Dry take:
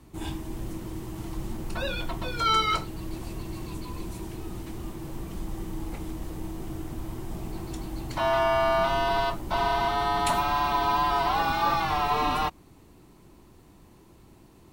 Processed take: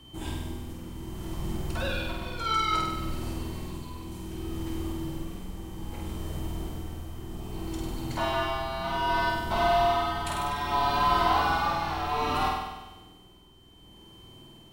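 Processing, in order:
steady tone 3,100 Hz −52 dBFS
amplitude tremolo 0.63 Hz, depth 53%
flutter between parallel walls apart 8.4 metres, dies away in 1.1 s
level −1.5 dB

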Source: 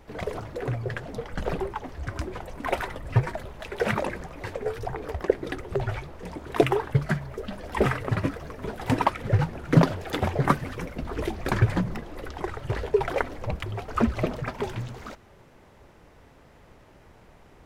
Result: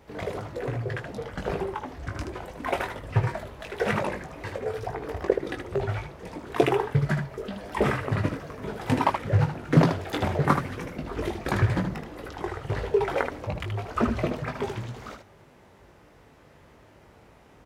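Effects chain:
high-pass filter 56 Hz
ambience of single reflections 20 ms −6 dB, 77 ms −6.5 dB
highs frequency-modulated by the lows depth 0.25 ms
level −1.5 dB

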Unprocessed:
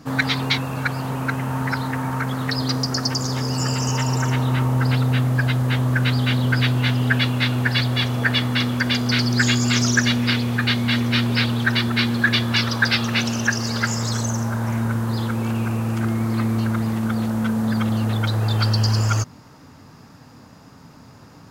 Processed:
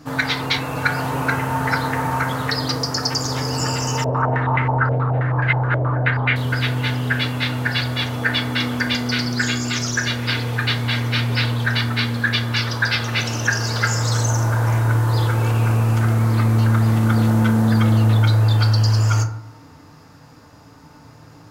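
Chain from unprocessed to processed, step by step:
parametric band 220 Hz −5 dB 0.8 octaves
speech leveller 0.5 s
feedback delay network reverb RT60 0.71 s, low-frequency decay 1×, high-frequency decay 0.4×, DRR 3.5 dB
0:04.04–0:06.36: low-pass on a step sequencer 9.4 Hz 580–2,100 Hz

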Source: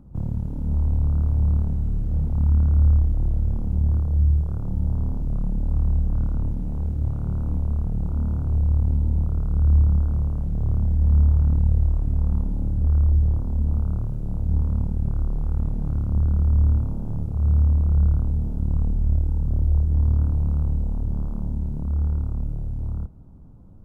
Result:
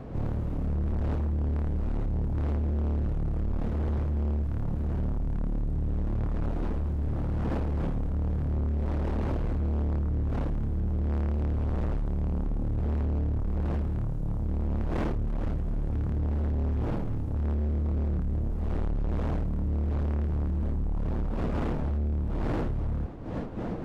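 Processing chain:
phase distortion by the signal itself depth 0.79 ms
wind on the microphone 350 Hz −33 dBFS
notch filter 390 Hz, Q 12
gain into a clipping stage and back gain 26 dB

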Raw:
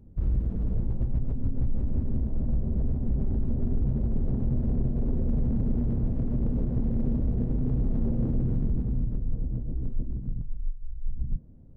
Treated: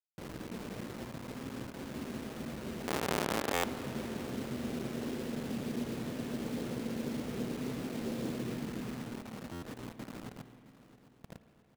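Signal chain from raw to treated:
0:02.87–0:03.64: each half-wave held at its own peak
in parallel at −2 dB: brickwall limiter −27 dBFS, peak gain reduction 31 dB
on the sum: high-pass filter 310 Hz 12 dB per octave
bit reduction 7 bits
on a send: repeating echo 665 ms, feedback 50%, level −17 dB
on the sum: spring reverb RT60 3.1 s, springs 50 ms, chirp 45 ms, DRR 11 dB
buffer that repeats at 0:03.53/0:09.52, samples 512, times 8
level −3 dB

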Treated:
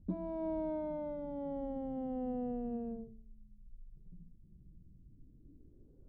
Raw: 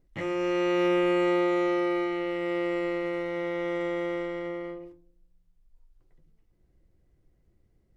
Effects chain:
gliding playback speed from 190% → 72%
low-pass filter sweep 190 Hz → 3,400 Hz, 0:05.06–0:07.87
level +6 dB

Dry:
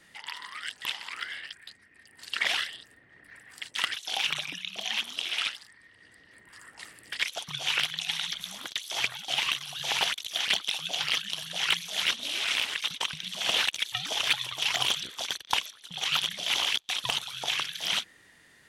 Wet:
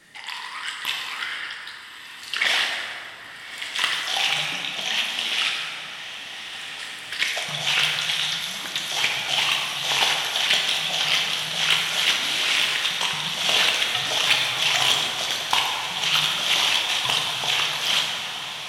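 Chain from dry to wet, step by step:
low-shelf EQ 170 Hz −3 dB
feedback delay with all-pass diffusion 1,265 ms, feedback 73%, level −12 dB
dense smooth reverb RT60 2.4 s, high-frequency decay 0.55×, DRR −1 dB
level +4.5 dB

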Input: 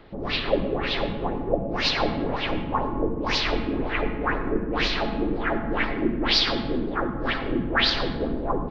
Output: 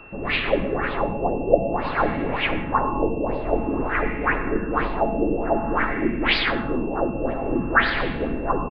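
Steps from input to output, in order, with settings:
auto-filter low-pass sine 0.52 Hz 610–2,400 Hz
steady tone 2,700 Hz −45 dBFS
downsampling to 11,025 Hz
level +1 dB

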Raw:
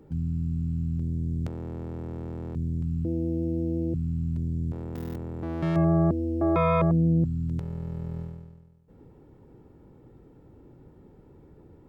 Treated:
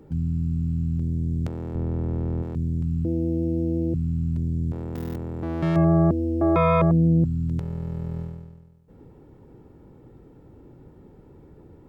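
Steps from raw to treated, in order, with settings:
0:01.75–0:02.43: spectral tilt −2 dB per octave
level +3.5 dB

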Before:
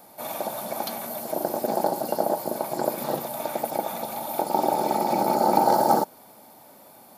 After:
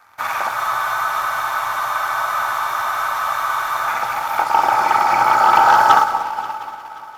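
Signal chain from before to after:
drawn EQ curve 110 Hz 0 dB, 180 Hz −21 dB, 610 Hz −13 dB, 1,300 Hz +15 dB, 2,500 Hz +5 dB, 4,000 Hz −7 dB, 6,000 Hz −1 dB, 10,000 Hz −15 dB
echo with a time of its own for lows and highs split 1,100 Hz, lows 237 ms, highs 98 ms, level −12 dB
leveller curve on the samples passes 2
on a send: echo machine with several playback heads 177 ms, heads first and third, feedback 57%, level −19.5 dB
on the sum: frozen spectrum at 0:00.58, 3.28 s
level +2.5 dB

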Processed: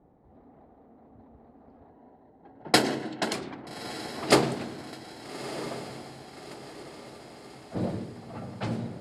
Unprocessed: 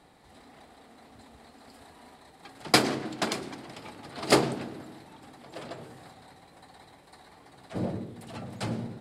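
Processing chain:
0:01.90–0:03.34: notch comb filter 1,200 Hz
low-pass that shuts in the quiet parts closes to 520 Hz, open at −27 dBFS
feedback delay with all-pass diffusion 1,259 ms, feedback 51%, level −12 dB
level +1 dB

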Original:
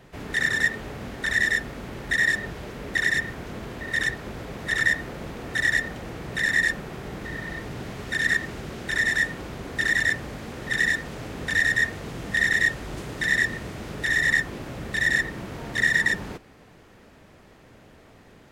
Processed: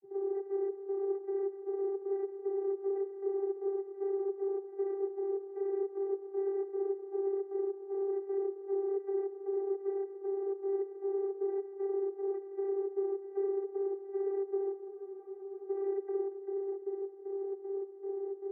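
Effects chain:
compressor on every frequency bin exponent 0.4
inverse Chebyshev low-pass filter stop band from 2,600 Hz, stop band 70 dB
echo with a time of its own for lows and highs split 390 Hz, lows 132 ms, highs 364 ms, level −8 dB
in parallel at +1 dB: downward compressor, threshold −49 dBFS, peak gain reduction 20.5 dB
on the sum: soft clipping −26 dBFS, distortion −15 dB
gate pattern ".xxx.xx." 154 BPM −12 dB
dynamic equaliser 320 Hz, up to +5 dB, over −53 dBFS, Q 3.1
channel vocoder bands 32, saw 393 Hz
downward expander −49 dBFS
frozen spectrum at 0:14.88, 0.79 s

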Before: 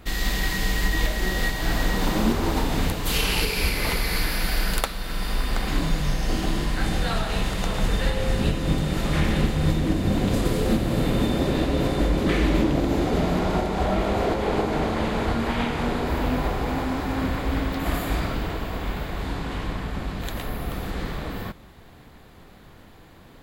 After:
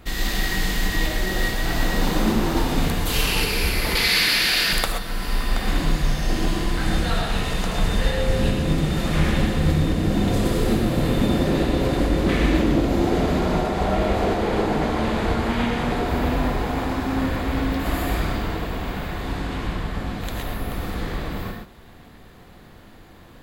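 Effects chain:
0:03.95–0:04.73: meter weighting curve D
reverb whose tail is shaped and stops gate 150 ms rising, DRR 2.5 dB

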